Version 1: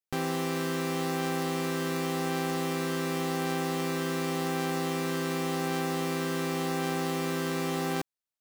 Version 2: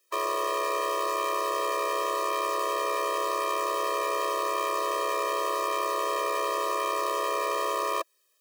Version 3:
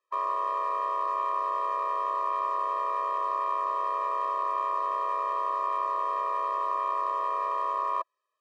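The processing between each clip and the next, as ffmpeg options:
ffmpeg -i in.wav -af "aeval=exprs='0.0944*sin(PI/2*7.08*val(0)/0.0944)':channel_layout=same,afftfilt=real='re*eq(mod(floor(b*sr/1024/330),2),1)':imag='im*eq(mod(floor(b*sr/1024/330),2),1)':win_size=1024:overlap=0.75,volume=4.5dB" out.wav
ffmpeg -i in.wav -af "bandpass=frequency=970:width_type=q:width=3:csg=0,volume=3.5dB" out.wav

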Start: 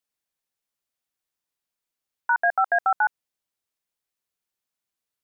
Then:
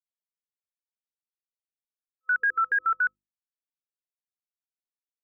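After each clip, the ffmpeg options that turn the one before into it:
ffmpeg -i in.wav -af "aeval=exprs='val(0)*gte(abs(val(0)),0.00251)':channel_layout=same,afftfilt=real='re*(1-between(b*sr/4096,510,1300))':imag='im*(1-between(b*sr/4096,510,1300))':win_size=4096:overlap=0.75,bandreject=frequency=50:width_type=h:width=6,bandreject=frequency=100:width_type=h:width=6,bandreject=frequency=150:width_type=h:width=6,bandreject=frequency=200:width_type=h:width=6,bandreject=frequency=250:width_type=h:width=6,bandreject=frequency=300:width_type=h:width=6,bandreject=frequency=350:width_type=h:width=6" out.wav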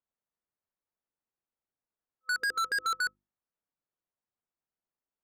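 ffmpeg -i in.wav -af "lowpass=1300,asoftclip=type=hard:threshold=-35.5dB,volume=8dB" out.wav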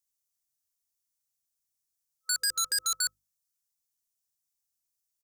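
ffmpeg -i in.wav -af "firequalizer=gain_entry='entry(130,0);entry(210,-14);entry(5800,14)':delay=0.05:min_phase=1" out.wav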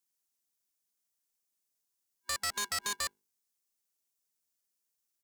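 ffmpeg -i in.wav -filter_complex "[0:a]acrossover=split=3200[link_01][link_02];[link_02]acompressor=threshold=-33dB:ratio=4:attack=1:release=60[link_03];[link_01][link_03]amix=inputs=2:normalize=0,aeval=exprs='val(0)*sgn(sin(2*PI*310*n/s))':channel_layout=same" out.wav

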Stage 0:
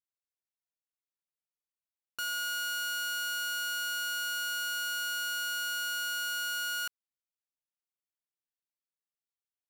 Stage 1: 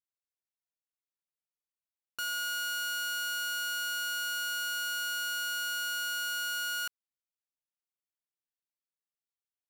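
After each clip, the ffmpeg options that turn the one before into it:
ffmpeg -i in.wav -af anull out.wav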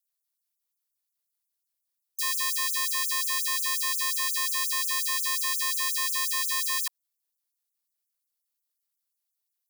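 ffmpeg -i in.wav -af "aexciter=amount=2.6:drive=3.9:freq=3900,aeval=exprs='val(0)*sin(2*PI*380*n/s)':channel_layout=same,afftfilt=real='re*gte(b*sr/1024,260*pow(6200/260,0.5+0.5*sin(2*PI*5.6*pts/sr)))':imag='im*gte(b*sr/1024,260*pow(6200/260,0.5+0.5*sin(2*PI*5.6*pts/sr)))':win_size=1024:overlap=0.75,volume=5.5dB" out.wav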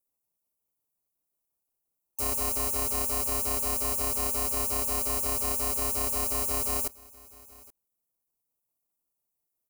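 ffmpeg -i in.wav -filter_complex "[0:a]acrossover=split=1100|5800[link_01][link_02][link_03];[link_02]acrusher=samples=25:mix=1:aa=0.000001[link_04];[link_01][link_04][link_03]amix=inputs=3:normalize=0,aecho=1:1:826:0.075" out.wav

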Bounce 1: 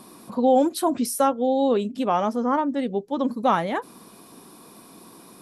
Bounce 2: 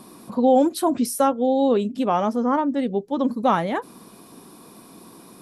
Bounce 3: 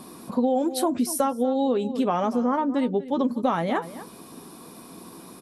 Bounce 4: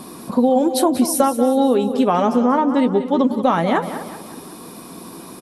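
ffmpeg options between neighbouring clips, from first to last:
ffmpeg -i in.wav -af "lowshelf=frequency=430:gain=3.5" out.wav
ffmpeg -i in.wav -filter_complex "[0:a]asplit=2[link_01][link_02];[link_02]adelay=12,volume=-11.5dB[link_03];[link_01][link_03]amix=inputs=2:normalize=0,asplit=2[link_04][link_05];[link_05]adelay=239.1,volume=-17dB,highshelf=frequency=4000:gain=-5.38[link_06];[link_04][link_06]amix=inputs=2:normalize=0,acompressor=threshold=-21dB:ratio=6,volume=1.5dB" out.wav
ffmpeg -i in.wav -af "aecho=1:1:187|374|561|748|935:0.251|0.118|0.0555|0.0261|0.0123,volume=7dB" out.wav

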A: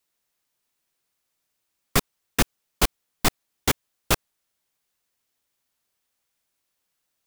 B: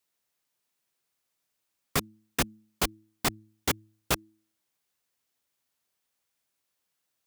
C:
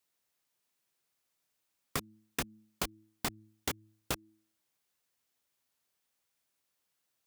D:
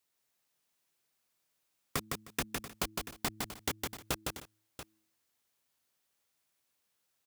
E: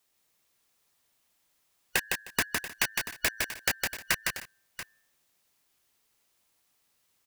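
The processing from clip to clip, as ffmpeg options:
ffmpeg -i in.wav -filter_complex "[0:a]asplit=2[link_01][link_02];[link_02]alimiter=limit=-13dB:level=0:latency=1:release=499,volume=-0.5dB[link_03];[link_01][link_03]amix=inputs=2:normalize=0,highpass=62,bandreject=frequency=107.7:width_type=h:width=4,bandreject=frequency=215.4:width_type=h:width=4,bandreject=frequency=323.1:width_type=h:width=4,volume=-8.5dB" out.wav
ffmpeg -i in.wav -af "acompressor=threshold=-30dB:ratio=10,volume=-1dB" out.wav
ffmpeg -i in.wav -af "aecho=1:1:159|309|685:0.668|0.1|0.224" out.wav
ffmpeg -i in.wav -af "afftfilt=real='real(if(lt(b,272),68*(eq(floor(b/68),0)*1+eq(floor(b/68),1)*0+eq(floor(b/68),2)*3+eq(floor(b/68),3)*2)+mod(b,68),b),0)':imag='imag(if(lt(b,272),68*(eq(floor(b/68),0)*1+eq(floor(b/68),1)*0+eq(floor(b/68),2)*3+eq(floor(b/68),3)*2)+mod(b,68),b),0)':win_size=2048:overlap=0.75,volume=7dB" out.wav

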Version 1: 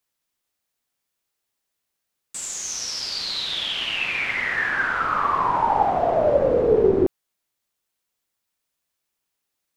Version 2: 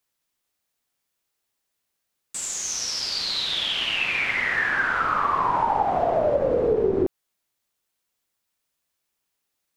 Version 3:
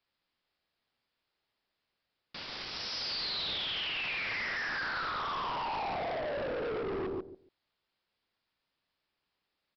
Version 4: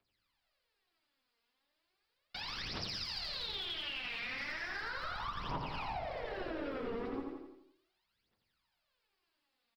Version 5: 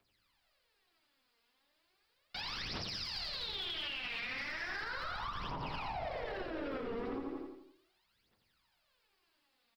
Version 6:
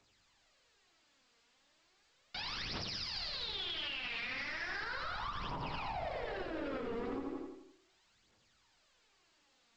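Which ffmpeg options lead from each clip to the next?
ffmpeg -i in.wav -af "acompressor=threshold=-19dB:ratio=5,volume=1dB" out.wav
ffmpeg -i in.wav -filter_complex "[0:a]alimiter=limit=-22dB:level=0:latency=1:release=15,asplit=2[link_01][link_02];[link_02]adelay=141,lowpass=frequency=1800:poles=1,volume=-6dB,asplit=2[link_03][link_04];[link_04]adelay=141,lowpass=frequency=1800:poles=1,volume=0.18,asplit=2[link_05][link_06];[link_06]adelay=141,lowpass=frequency=1800:poles=1,volume=0.18[link_07];[link_01][link_03][link_05][link_07]amix=inputs=4:normalize=0,aresample=11025,volume=33.5dB,asoftclip=hard,volume=-33.5dB,aresample=44100" out.wav
ffmpeg -i in.wav -filter_complex "[0:a]aphaser=in_gain=1:out_gain=1:delay=4.4:decay=0.79:speed=0.36:type=triangular,aecho=1:1:85|170|255|340|425|510:0.501|0.251|0.125|0.0626|0.0313|0.0157,acrossover=split=230[link_01][link_02];[link_02]acompressor=threshold=-35dB:ratio=6[link_03];[link_01][link_03]amix=inputs=2:normalize=0,volume=-3.5dB" out.wav
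ffmpeg -i in.wav -af "alimiter=level_in=13dB:limit=-24dB:level=0:latency=1:release=135,volume=-13dB,volume=5.5dB" out.wav
ffmpeg -i in.wav -ar 16000 -c:a pcm_alaw out.wav

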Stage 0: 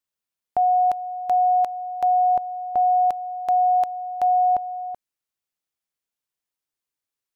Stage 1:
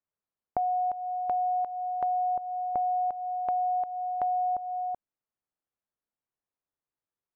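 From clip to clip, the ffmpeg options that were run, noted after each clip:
ffmpeg -i in.wav -af "lowpass=1300,acompressor=threshold=-28dB:ratio=4" out.wav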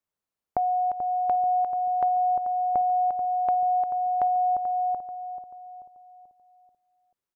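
ffmpeg -i in.wav -filter_complex "[0:a]asplit=2[link_01][link_02];[link_02]adelay=436,lowpass=frequency=1200:poles=1,volume=-10dB,asplit=2[link_03][link_04];[link_04]adelay=436,lowpass=frequency=1200:poles=1,volume=0.5,asplit=2[link_05][link_06];[link_06]adelay=436,lowpass=frequency=1200:poles=1,volume=0.5,asplit=2[link_07][link_08];[link_08]adelay=436,lowpass=frequency=1200:poles=1,volume=0.5,asplit=2[link_09][link_10];[link_10]adelay=436,lowpass=frequency=1200:poles=1,volume=0.5[link_11];[link_01][link_03][link_05][link_07][link_09][link_11]amix=inputs=6:normalize=0,volume=3dB" out.wav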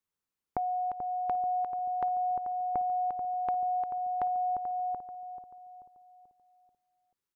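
ffmpeg -i in.wav -af "equalizer=frequency=650:width=4.6:gain=-12.5,volume=-1dB" out.wav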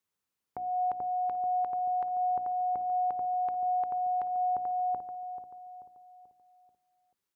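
ffmpeg -i in.wav -af "highpass=58,bandreject=frequency=60:width_type=h:width=6,bandreject=frequency=120:width_type=h:width=6,bandreject=frequency=180:width_type=h:width=6,bandreject=frequency=240:width_type=h:width=6,bandreject=frequency=300:width_type=h:width=6,bandreject=frequency=360:width_type=h:width=6,alimiter=level_in=4dB:limit=-24dB:level=0:latency=1:release=261,volume=-4dB,volume=3dB" out.wav

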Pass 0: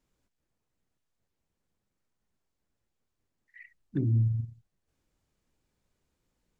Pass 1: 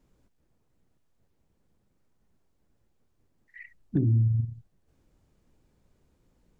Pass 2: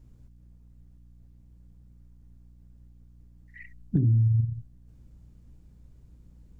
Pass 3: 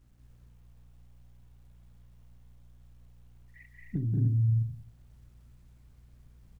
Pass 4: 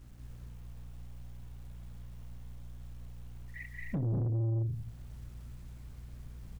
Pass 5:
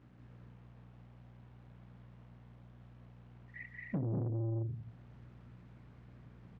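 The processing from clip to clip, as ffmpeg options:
ffmpeg -i in.wav -af "tiltshelf=frequency=970:gain=5,acompressor=threshold=-33dB:ratio=2.5,volume=7.5dB" out.wav
ffmpeg -i in.wav -af "aeval=exprs='val(0)+0.000708*(sin(2*PI*60*n/s)+sin(2*PI*2*60*n/s)/2+sin(2*PI*3*60*n/s)/3+sin(2*PI*4*60*n/s)/4+sin(2*PI*5*60*n/s)/5)':channel_layout=same,bass=frequency=250:gain=12,treble=frequency=4000:gain=3,acompressor=threshold=-20dB:ratio=4,volume=-1dB" out.wav
ffmpeg -i in.wav -filter_complex "[0:a]acrusher=bits=10:mix=0:aa=0.000001,asplit=2[link_01][link_02];[link_02]aecho=0:1:183.7|218.7|291.5:0.631|0.794|0.501[link_03];[link_01][link_03]amix=inputs=2:normalize=0,volume=-8.5dB" out.wav
ffmpeg -i in.wav -af "alimiter=level_in=4.5dB:limit=-24dB:level=0:latency=1:release=367,volume=-4.5dB,asoftclip=type=tanh:threshold=-38dB,volume=9.5dB" out.wav
ffmpeg -i in.wav -af "highpass=140,lowpass=2200" out.wav

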